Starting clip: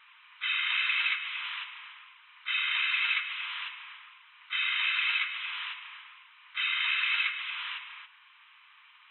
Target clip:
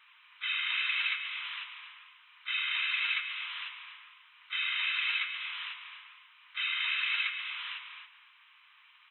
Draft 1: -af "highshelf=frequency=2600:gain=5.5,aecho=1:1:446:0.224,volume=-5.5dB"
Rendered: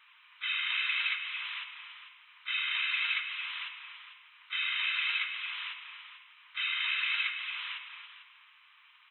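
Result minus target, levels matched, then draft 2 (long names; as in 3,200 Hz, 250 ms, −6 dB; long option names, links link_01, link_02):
echo 194 ms late
-af "highshelf=frequency=2600:gain=5.5,aecho=1:1:252:0.224,volume=-5.5dB"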